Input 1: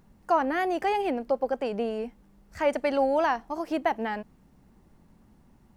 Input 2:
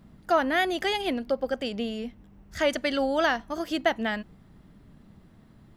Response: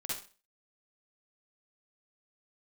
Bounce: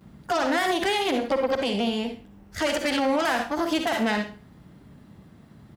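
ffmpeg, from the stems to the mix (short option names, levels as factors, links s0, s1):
-filter_complex "[0:a]volume=0.75[s0];[1:a]aeval=exprs='0.299*(cos(1*acos(clip(val(0)/0.299,-1,1)))-cos(1*PI/2))+0.0531*(cos(6*acos(clip(val(0)/0.299,-1,1)))-cos(6*PI/2))+0.075*(cos(8*acos(clip(val(0)/0.299,-1,1)))-cos(8*PI/2))':c=same,adelay=9.2,volume=1.19,asplit=2[s1][s2];[s2]volume=0.596[s3];[2:a]atrim=start_sample=2205[s4];[s3][s4]afir=irnorm=-1:irlink=0[s5];[s0][s1][s5]amix=inputs=3:normalize=0,highpass=62,alimiter=limit=0.178:level=0:latency=1:release=56"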